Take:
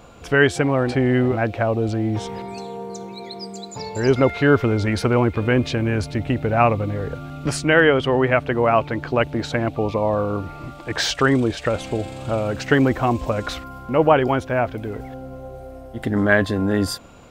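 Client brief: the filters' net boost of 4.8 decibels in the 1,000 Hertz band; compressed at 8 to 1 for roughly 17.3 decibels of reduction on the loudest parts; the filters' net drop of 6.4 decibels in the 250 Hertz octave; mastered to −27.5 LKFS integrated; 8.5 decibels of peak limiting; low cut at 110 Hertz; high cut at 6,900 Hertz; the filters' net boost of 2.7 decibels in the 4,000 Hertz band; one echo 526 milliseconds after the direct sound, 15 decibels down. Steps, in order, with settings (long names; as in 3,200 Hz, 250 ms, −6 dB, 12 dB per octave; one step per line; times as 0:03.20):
high-pass filter 110 Hz
low-pass filter 6,900 Hz
parametric band 250 Hz −8.5 dB
parametric band 1,000 Hz +7 dB
parametric band 4,000 Hz +3.5 dB
downward compressor 8 to 1, threshold −25 dBFS
brickwall limiter −18 dBFS
single-tap delay 526 ms −15 dB
level +3.5 dB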